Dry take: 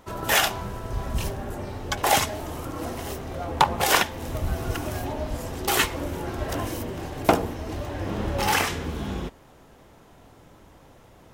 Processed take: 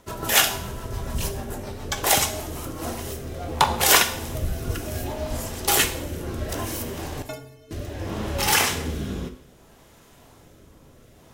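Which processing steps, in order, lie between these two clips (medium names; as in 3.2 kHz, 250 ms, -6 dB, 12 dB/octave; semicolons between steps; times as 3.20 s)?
treble shelf 4.3 kHz +8.5 dB; 3.33–3.91 s: crackle 69 per s -32 dBFS; 7.22–7.71 s: inharmonic resonator 130 Hz, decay 0.72 s, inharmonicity 0.03; rotary cabinet horn 7 Hz, later 0.65 Hz, at 2.21 s; two-slope reverb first 0.63 s, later 2 s, from -26 dB, DRR 7 dB; trim +1 dB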